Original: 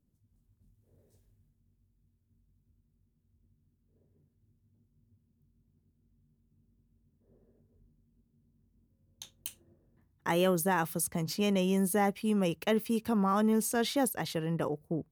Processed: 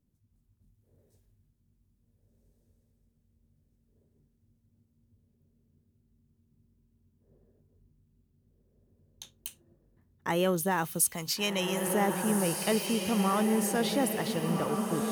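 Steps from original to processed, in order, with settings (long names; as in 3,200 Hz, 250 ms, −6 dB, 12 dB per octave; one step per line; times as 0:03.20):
0:11.00–0:11.87: tilt shelving filter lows −7.5 dB, about 780 Hz
feedback delay with all-pass diffusion 1,497 ms, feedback 40%, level −4 dB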